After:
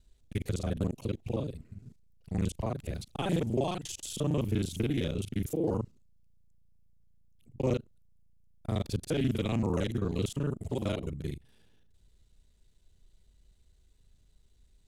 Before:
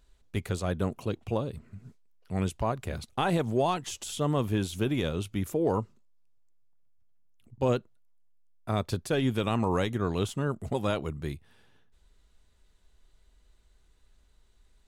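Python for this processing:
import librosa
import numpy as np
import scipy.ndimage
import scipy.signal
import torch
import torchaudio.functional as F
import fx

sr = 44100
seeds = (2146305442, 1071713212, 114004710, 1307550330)

y = fx.local_reverse(x, sr, ms=35.0)
y = fx.peak_eq(y, sr, hz=1200.0, db=-10.5, octaves=1.9)
y = fx.doppler_dist(y, sr, depth_ms=0.19)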